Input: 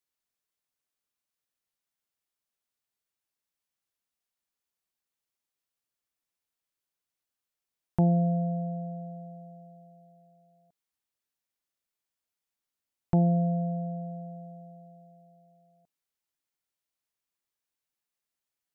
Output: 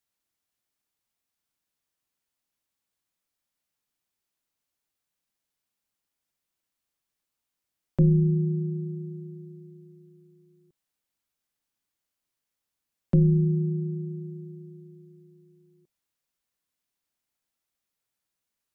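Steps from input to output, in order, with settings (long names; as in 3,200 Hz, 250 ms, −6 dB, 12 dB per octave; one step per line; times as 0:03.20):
frequency shifter −330 Hz
level +3.5 dB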